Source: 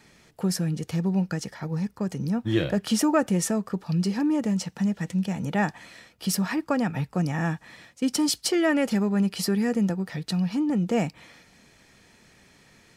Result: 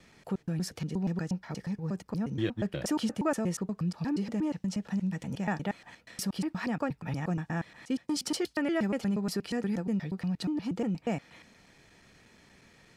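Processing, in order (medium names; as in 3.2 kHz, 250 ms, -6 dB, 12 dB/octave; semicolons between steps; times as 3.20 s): slices played last to first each 119 ms, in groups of 2; treble shelf 7 kHz -7 dB; in parallel at +1 dB: compression, threshold -35 dBFS, peak gain reduction 16.5 dB; on the sum: trim -8.5 dB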